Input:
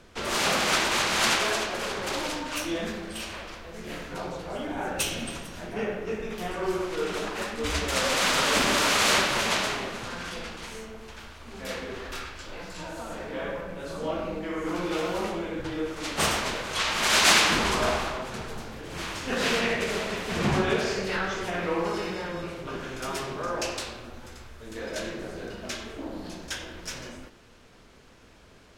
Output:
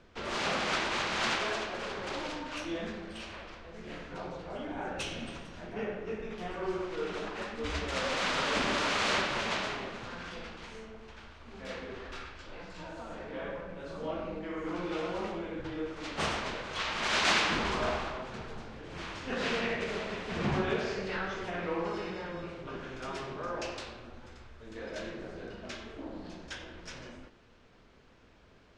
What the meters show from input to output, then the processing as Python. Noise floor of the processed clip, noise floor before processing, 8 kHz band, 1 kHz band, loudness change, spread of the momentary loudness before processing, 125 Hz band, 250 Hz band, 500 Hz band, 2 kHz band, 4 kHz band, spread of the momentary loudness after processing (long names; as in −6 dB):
−58 dBFS, −53 dBFS, −14.0 dB, −6.0 dB, −7.0 dB, 17 LU, −5.5 dB, −5.5 dB, −6.0 dB, −6.5 dB, −8.5 dB, 16 LU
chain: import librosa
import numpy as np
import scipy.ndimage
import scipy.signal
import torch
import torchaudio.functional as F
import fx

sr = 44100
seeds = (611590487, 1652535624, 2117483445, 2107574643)

y = fx.air_absorb(x, sr, metres=110.0)
y = y * 10.0 ** (-5.5 / 20.0)